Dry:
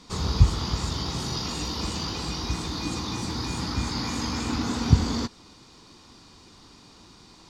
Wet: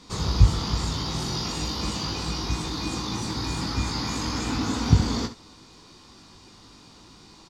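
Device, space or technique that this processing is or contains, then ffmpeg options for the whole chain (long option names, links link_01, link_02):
slapback doubling: -filter_complex "[0:a]asplit=3[link_01][link_02][link_03];[link_02]adelay=19,volume=-6dB[link_04];[link_03]adelay=69,volume=-12dB[link_05];[link_01][link_04][link_05]amix=inputs=3:normalize=0"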